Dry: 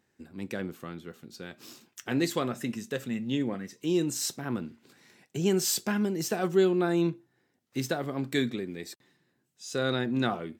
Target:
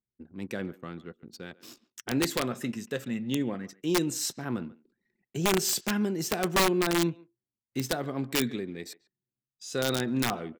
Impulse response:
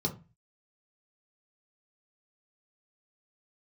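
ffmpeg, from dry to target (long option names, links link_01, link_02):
-filter_complex "[0:a]anlmdn=0.00631,asplit=2[link_01][link_02];[link_02]adelay=140,highpass=300,lowpass=3400,asoftclip=type=hard:threshold=-21.5dB,volume=-20dB[link_03];[link_01][link_03]amix=inputs=2:normalize=0,aeval=exprs='(mod(7.94*val(0)+1,2)-1)/7.94':channel_layout=same"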